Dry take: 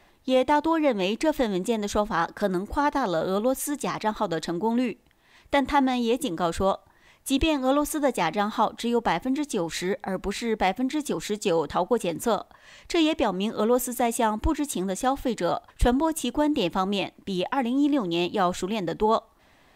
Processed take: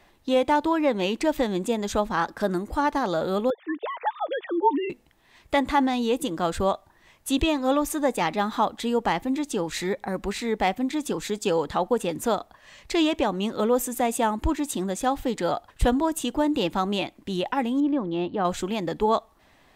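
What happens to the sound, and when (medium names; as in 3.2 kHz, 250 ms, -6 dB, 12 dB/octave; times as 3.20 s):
3.50–4.90 s: formants replaced by sine waves
17.80–18.45 s: tape spacing loss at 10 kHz 34 dB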